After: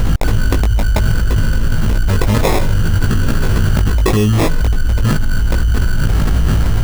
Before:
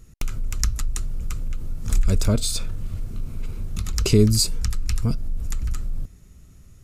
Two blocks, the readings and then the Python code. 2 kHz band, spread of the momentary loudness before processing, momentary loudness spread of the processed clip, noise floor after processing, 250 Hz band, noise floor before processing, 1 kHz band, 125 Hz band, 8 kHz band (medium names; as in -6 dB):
+18.0 dB, 16 LU, 3 LU, -14 dBFS, +8.5 dB, -48 dBFS, +20.5 dB, +11.5 dB, -0.5 dB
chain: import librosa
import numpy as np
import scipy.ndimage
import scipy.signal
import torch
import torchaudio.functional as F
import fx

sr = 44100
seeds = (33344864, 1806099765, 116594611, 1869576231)

p1 = fx.graphic_eq_15(x, sr, hz=(1000, 2500, 10000), db=(10, -9, -11))
p2 = 10.0 ** (-12.5 / 20.0) * (np.abs((p1 / 10.0 ** (-12.5 / 20.0) + 3.0) % 4.0 - 2.0) - 1.0)
p3 = p1 + (p2 * librosa.db_to_amplitude(-6.0))
p4 = fx.sample_hold(p3, sr, seeds[0], rate_hz=1500.0, jitter_pct=0)
p5 = fx.doubler(p4, sr, ms=19.0, db=-2.5)
p6 = fx.env_flatten(p5, sr, amount_pct=100)
y = p6 * librosa.db_to_amplitude(-5.0)